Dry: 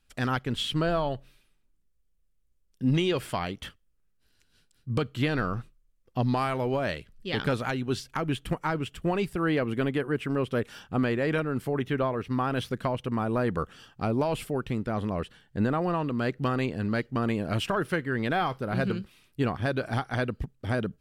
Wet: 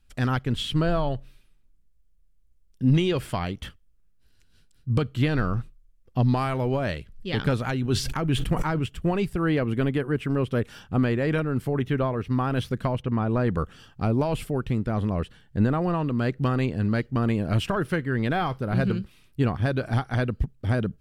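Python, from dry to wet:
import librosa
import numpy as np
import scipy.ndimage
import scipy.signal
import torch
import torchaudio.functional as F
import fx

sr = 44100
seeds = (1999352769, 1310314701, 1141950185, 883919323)

y = fx.sustainer(x, sr, db_per_s=63.0, at=(7.8, 8.86))
y = fx.lowpass(y, sr, hz=fx.line((13.01, 3200.0), (13.49, 8100.0)), slope=12, at=(13.01, 13.49), fade=0.02)
y = fx.low_shelf(y, sr, hz=170.0, db=10.0)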